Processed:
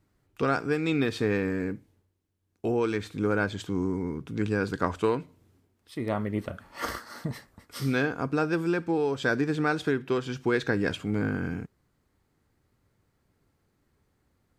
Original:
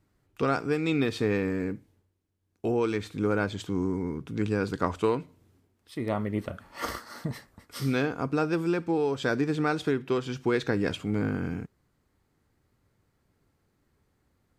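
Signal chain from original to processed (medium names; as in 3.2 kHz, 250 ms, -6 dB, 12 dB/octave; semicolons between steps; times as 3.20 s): dynamic bell 1.6 kHz, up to +6 dB, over -52 dBFS, Q 7.2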